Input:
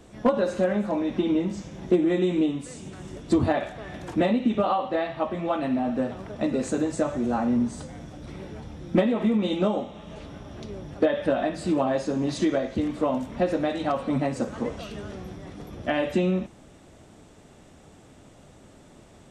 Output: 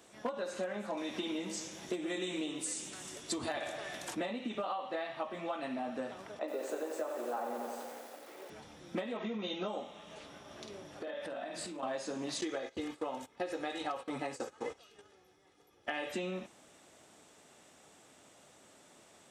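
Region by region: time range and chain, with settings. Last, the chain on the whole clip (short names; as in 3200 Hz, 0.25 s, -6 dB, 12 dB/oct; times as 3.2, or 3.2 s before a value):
0.97–4.15 high shelf 2900 Hz +10 dB + darkening echo 0.12 s, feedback 54%, level -10 dB
6.39–8.5 HPF 410 Hz 24 dB/oct + tilt -4 dB/oct + lo-fi delay 88 ms, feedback 80%, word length 8-bit, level -8 dB
9.17–9.68 brick-wall FIR low-pass 6900 Hz + notch comb 290 Hz
10.43–11.83 doubler 50 ms -6 dB + compressor 8:1, threshold -29 dBFS
12.41–16.1 gate -34 dBFS, range -16 dB + comb 2.4 ms, depth 54%
whole clip: HPF 790 Hz 6 dB/oct; high shelf 6700 Hz +5.5 dB; compressor, threshold -30 dBFS; gain -3.5 dB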